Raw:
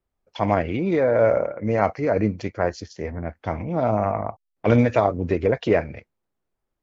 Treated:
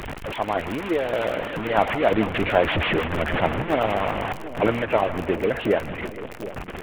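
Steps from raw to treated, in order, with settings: one-bit delta coder 16 kbps, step -20 dBFS; Doppler pass-by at 3.05 s, 9 m/s, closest 11 m; harmonic-percussive split harmonic -16 dB; crackle 33 per s -33 dBFS; two-band feedback delay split 630 Hz, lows 741 ms, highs 157 ms, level -13 dB; trim +7 dB

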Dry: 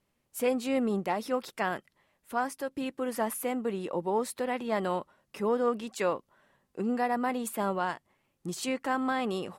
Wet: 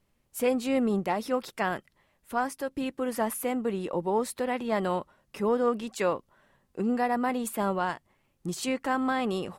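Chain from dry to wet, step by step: bass shelf 83 Hz +11 dB; trim +1.5 dB

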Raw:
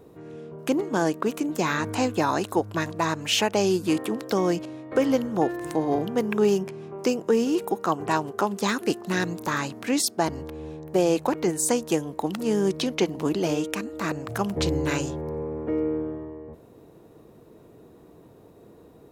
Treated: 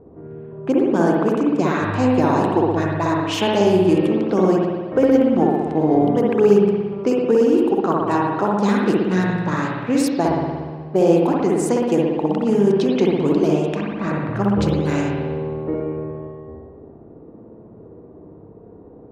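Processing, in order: level-controlled noise filter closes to 1.1 kHz, open at -20 dBFS; tilt shelf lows +5 dB, about 1.1 kHz; spring tank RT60 1.4 s, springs 59 ms, chirp 60 ms, DRR -2.5 dB

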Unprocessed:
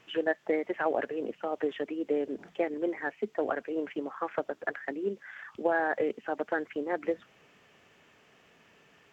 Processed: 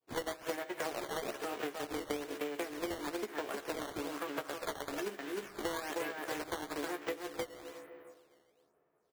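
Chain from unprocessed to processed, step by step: formants flattened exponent 0.3; peaking EQ 840 Hz -6.5 dB 0.23 oct; Schroeder reverb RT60 2.9 s, combs from 28 ms, DRR 13.5 dB; in parallel at +0.5 dB: level held to a coarse grid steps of 14 dB; on the sum: low-pass 1.8 kHz 6 dB/octave; doubling 14 ms -4.5 dB; expander -53 dBFS; resonant low shelf 280 Hz -10 dB, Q 1.5; on a send: delay 309 ms -3.5 dB; on the sum: compression 5:1, threshold -34 dBFS, peak gain reduction 16 dB; level-controlled noise filter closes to 820 Hz, open at -35 dBFS; decimation with a swept rate 10×, swing 160% 1.1 Hz; trim -2 dB

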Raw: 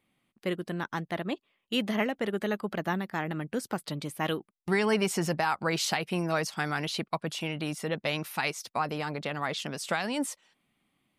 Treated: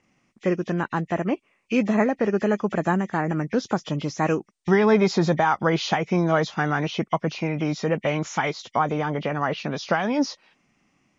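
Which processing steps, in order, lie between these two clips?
knee-point frequency compression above 1.8 kHz 1.5:1; dynamic bell 3.2 kHz, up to -8 dB, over -48 dBFS, Q 0.76; trim +9 dB

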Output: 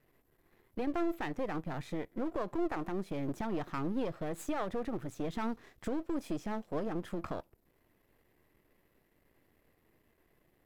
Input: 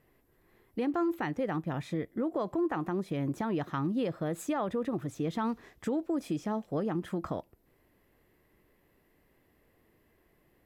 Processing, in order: partial rectifier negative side -12 dB

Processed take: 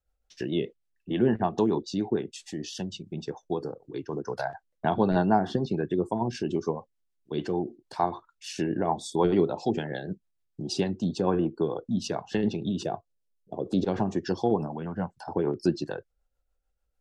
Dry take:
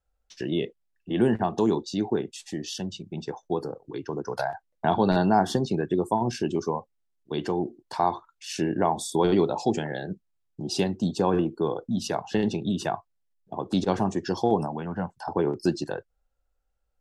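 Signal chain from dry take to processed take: low-pass that closes with the level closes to 2.8 kHz, closed at -18.5 dBFS; rotary cabinet horn 6.7 Hz; 12.83–13.85 s: ten-band graphic EQ 500 Hz +8 dB, 1 kHz -8 dB, 2 kHz -6 dB

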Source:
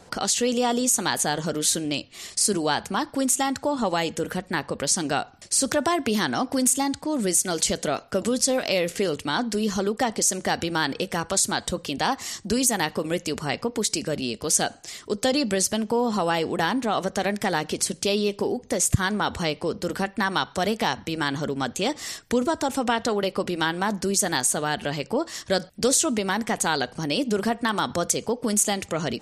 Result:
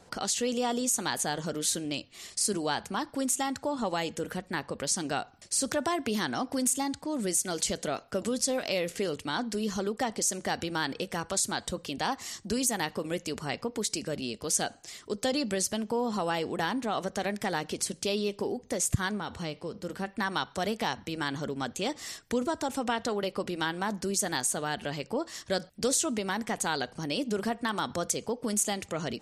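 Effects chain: 19.11–20.08 s: harmonic-percussive split percussive -7 dB; trim -6.5 dB

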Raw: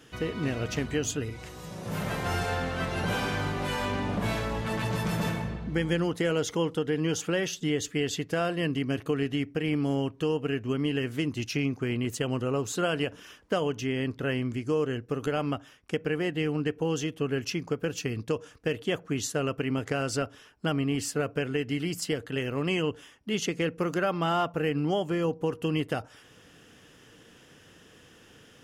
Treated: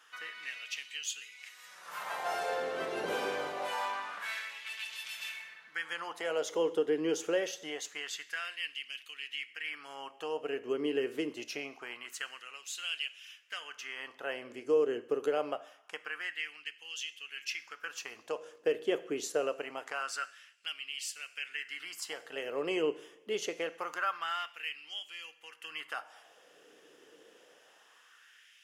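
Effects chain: two-slope reverb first 0.71 s, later 2.5 s, from -18 dB, DRR 12.5 dB; LFO high-pass sine 0.25 Hz 400–2800 Hz; trim -6.5 dB

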